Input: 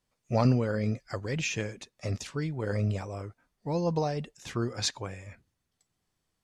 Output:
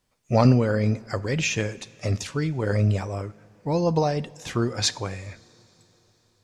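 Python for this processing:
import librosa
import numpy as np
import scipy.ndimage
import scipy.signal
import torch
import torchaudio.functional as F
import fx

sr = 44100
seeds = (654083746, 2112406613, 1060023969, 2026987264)

y = fx.rev_double_slope(x, sr, seeds[0], early_s=0.47, late_s=4.4, knee_db=-16, drr_db=16.0)
y = y * 10.0 ** (6.5 / 20.0)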